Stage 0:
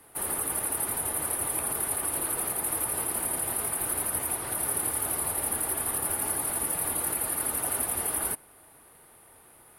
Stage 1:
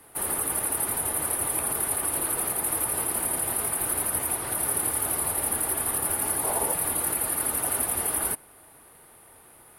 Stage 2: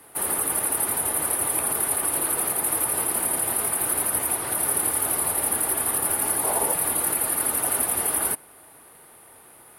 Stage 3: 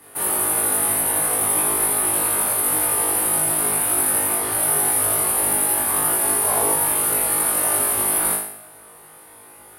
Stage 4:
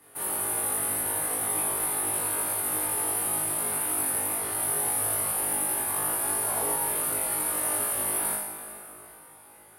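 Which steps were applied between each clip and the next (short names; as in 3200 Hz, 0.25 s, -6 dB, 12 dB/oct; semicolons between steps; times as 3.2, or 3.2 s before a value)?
spectral gain 6.44–6.73, 380–1100 Hz +8 dB; gain +2.5 dB
low shelf 79 Hz -11 dB; gain +3 dB
flutter echo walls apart 3.3 m, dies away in 0.66 s
plate-style reverb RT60 3.8 s, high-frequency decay 0.75×, DRR 6 dB; gain -9 dB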